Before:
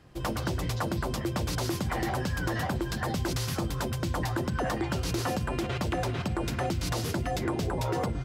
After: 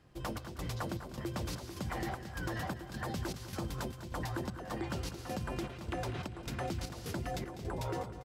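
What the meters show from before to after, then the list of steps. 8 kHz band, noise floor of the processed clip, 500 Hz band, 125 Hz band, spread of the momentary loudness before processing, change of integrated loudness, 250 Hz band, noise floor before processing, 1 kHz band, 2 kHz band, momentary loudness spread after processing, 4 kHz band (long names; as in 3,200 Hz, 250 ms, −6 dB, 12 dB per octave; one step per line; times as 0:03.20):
−9.5 dB, −48 dBFS, −8.5 dB, −9.5 dB, 1 LU, −9.0 dB, −8.5 dB, −35 dBFS, −8.5 dB, −8.5 dB, 3 LU, −9.5 dB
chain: square-wave tremolo 1.7 Hz, depth 65%, duty 65%
on a send: repeating echo 199 ms, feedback 37%, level −13 dB
on the sum: level −7.5 dB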